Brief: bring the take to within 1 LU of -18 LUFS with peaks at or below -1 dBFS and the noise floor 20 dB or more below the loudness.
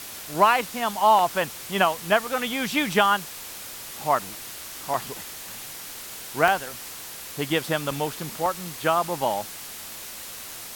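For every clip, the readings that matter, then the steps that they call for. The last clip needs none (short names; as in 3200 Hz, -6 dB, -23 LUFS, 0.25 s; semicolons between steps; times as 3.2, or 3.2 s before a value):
dropouts 8; longest dropout 1.5 ms; noise floor -39 dBFS; noise floor target -46 dBFS; loudness -25.5 LUFS; peak -4.0 dBFS; loudness target -18.0 LUFS
-> interpolate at 0.34/1.19/2.27/4.19/4.94/6.48/7.91/8.46, 1.5 ms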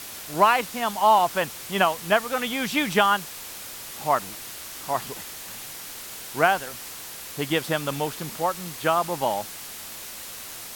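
dropouts 0; noise floor -39 dBFS; noise floor target -46 dBFS
-> noise print and reduce 7 dB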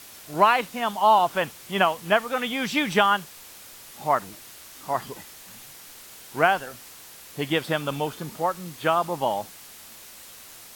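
noise floor -46 dBFS; loudness -24.0 LUFS; peak -4.0 dBFS; loudness target -18.0 LUFS
-> gain +6 dB; limiter -1 dBFS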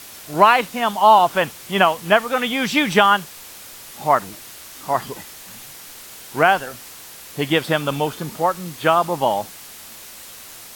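loudness -18.5 LUFS; peak -1.0 dBFS; noise floor -40 dBFS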